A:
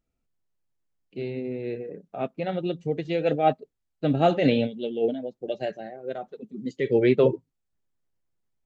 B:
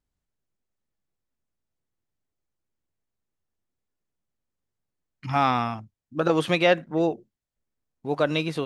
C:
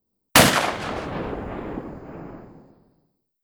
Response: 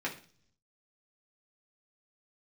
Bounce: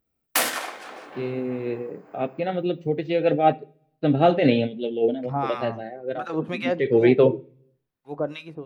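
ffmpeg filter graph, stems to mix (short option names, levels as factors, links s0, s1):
-filter_complex "[0:a]highpass=55,equalizer=f=7100:t=o:w=0.61:g=-11.5,volume=1.19,asplit=2[s0][s1];[s1]volume=0.178[s2];[1:a]equalizer=f=5000:w=0.4:g=-7.5,acrossover=split=1100[s3][s4];[s3]aeval=exprs='val(0)*(1-1/2+1/2*cos(2*PI*2.8*n/s))':c=same[s5];[s4]aeval=exprs='val(0)*(1-1/2-1/2*cos(2*PI*2.8*n/s))':c=same[s6];[s5][s6]amix=inputs=2:normalize=0,dynaudnorm=f=330:g=5:m=3.55,volume=0.299,asplit=2[s7][s8];[s8]volume=0.133[s9];[2:a]highpass=420,highshelf=f=7100:g=11,volume=0.2,asplit=2[s10][s11];[s11]volume=0.531[s12];[3:a]atrim=start_sample=2205[s13];[s2][s9][s12]amix=inputs=3:normalize=0[s14];[s14][s13]afir=irnorm=-1:irlink=0[s15];[s0][s7][s10][s15]amix=inputs=4:normalize=0"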